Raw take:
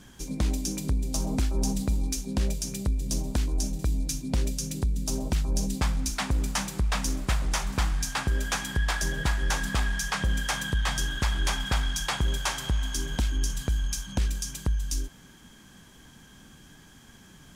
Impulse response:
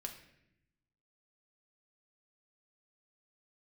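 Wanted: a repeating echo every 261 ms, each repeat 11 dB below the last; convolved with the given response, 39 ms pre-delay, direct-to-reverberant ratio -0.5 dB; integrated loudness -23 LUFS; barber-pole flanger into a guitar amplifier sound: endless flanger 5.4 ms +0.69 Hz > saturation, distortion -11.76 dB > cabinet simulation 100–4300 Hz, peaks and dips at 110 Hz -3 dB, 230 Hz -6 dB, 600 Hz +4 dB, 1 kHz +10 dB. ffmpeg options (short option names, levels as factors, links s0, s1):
-filter_complex "[0:a]aecho=1:1:261|522|783:0.282|0.0789|0.0221,asplit=2[s0][s1];[1:a]atrim=start_sample=2205,adelay=39[s2];[s1][s2]afir=irnorm=-1:irlink=0,volume=1.41[s3];[s0][s3]amix=inputs=2:normalize=0,asplit=2[s4][s5];[s5]adelay=5.4,afreqshift=0.69[s6];[s4][s6]amix=inputs=2:normalize=1,asoftclip=threshold=0.0668,highpass=100,equalizer=f=110:t=q:w=4:g=-3,equalizer=f=230:t=q:w=4:g=-6,equalizer=f=600:t=q:w=4:g=4,equalizer=f=1000:t=q:w=4:g=10,lowpass=f=4300:w=0.5412,lowpass=f=4300:w=1.3066,volume=3.76"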